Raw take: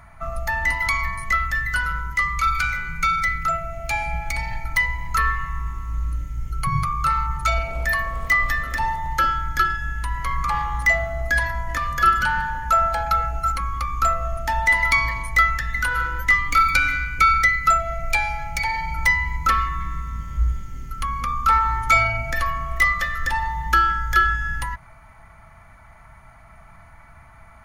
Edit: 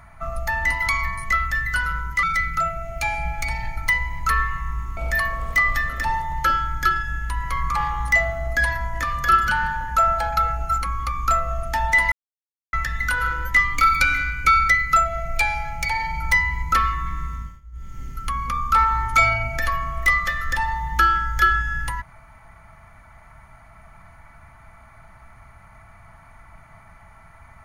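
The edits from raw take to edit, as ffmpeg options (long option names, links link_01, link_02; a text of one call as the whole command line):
ffmpeg -i in.wav -filter_complex "[0:a]asplit=7[link_01][link_02][link_03][link_04][link_05][link_06][link_07];[link_01]atrim=end=2.232[link_08];[link_02]atrim=start=3.108:end=5.852[link_09];[link_03]atrim=start=7.708:end=14.86,asetpts=PTS-STARTPTS,afade=type=out:start_time=7.148:duration=0.004:curve=hsin[link_10];[link_04]atrim=start=14.86:end=15.47,asetpts=PTS-STARTPTS,volume=0[link_11];[link_05]atrim=start=15.47:end=20.35,asetpts=PTS-STARTPTS,afade=type=in:duration=0.004:curve=hsin,afade=type=out:start_time=4.61:duration=0.27:silence=0.0749894[link_12];[link_06]atrim=start=20.35:end=20.46,asetpts=PTS-STARTPTS,volume=-22.5dB[link_13];[link_07]atrim=start=20.46,asetpts=PTS-STARTPTS,afade=type=in:duration=0.27:silence=0.0749894[link_14];[link_08][link_09]acrossfade=duration=0.004:curve1=hsin:curve2=hsin[link_15];[link_10][link_11][link_12][link_13][link_14]concat=n=5:v=0:a=1[link_16];[link_15][link_16]acrossfade=duration=0.004:curve1=hsin:curve2=hsin" out.wav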